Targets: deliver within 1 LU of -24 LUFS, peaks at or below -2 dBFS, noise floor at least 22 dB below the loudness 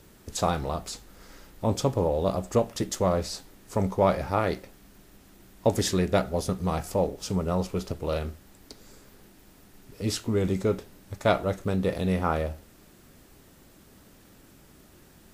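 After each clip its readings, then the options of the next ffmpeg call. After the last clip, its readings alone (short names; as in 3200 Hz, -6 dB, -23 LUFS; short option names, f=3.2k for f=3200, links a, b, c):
loudness -28.0 LUFS; peak -9.0 dBFS; loudness target -24.0 LUFS
-> -af "volume=4dB"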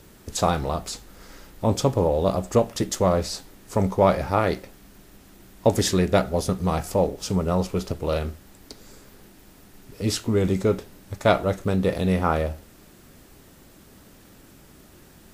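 loudness -24.0 LUFS; peak -5.0 dBFS; noise floor -51 dBFS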